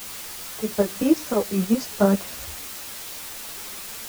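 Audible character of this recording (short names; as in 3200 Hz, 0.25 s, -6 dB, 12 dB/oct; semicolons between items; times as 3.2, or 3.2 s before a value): tremolo saw up 9.8 Hz, depth 65%; a quantiser's noise floor 6-bit, dither triangular; a shimmering, thickened sound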